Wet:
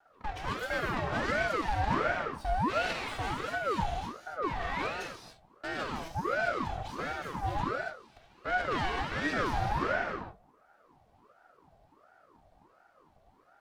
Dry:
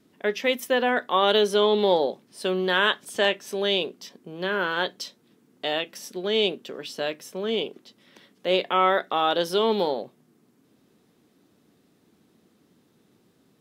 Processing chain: comb filter that takes the minimum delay 2.6 ms; high-pass 190 Hz 12 dB/octave; tilt EQ -3.5 dB/octave; saturation -24.5 dBFS, distortion -8 dB; 7.19–7.61 s: doubling 12 ms -2.5 dB; gated-style reverb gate 310 ms flat, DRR -1.5 dB; ring modulator with a swept carrier 710 Hz, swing 55%, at 1.4 Hz; trim -3 dB

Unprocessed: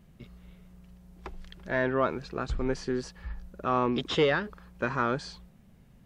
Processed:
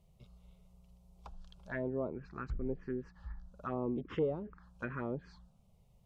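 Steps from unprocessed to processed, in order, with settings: touch-sensitive phaser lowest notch 260 Hz, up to 1.7 kHz, full sweep at -22.5 dBFS; low-pass that closes with the level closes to 690 Hz, closed at -26 dBFS; trim -6.5 dB

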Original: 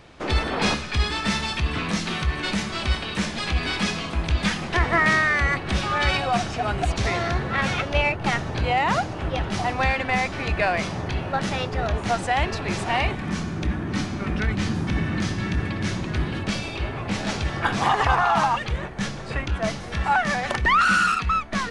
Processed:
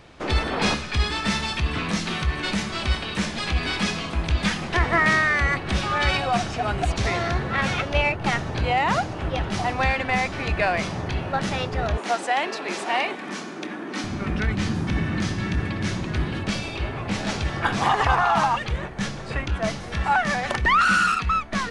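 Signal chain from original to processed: 11.97–14.04 s: high-pass 260 Hz 24 dB/octave

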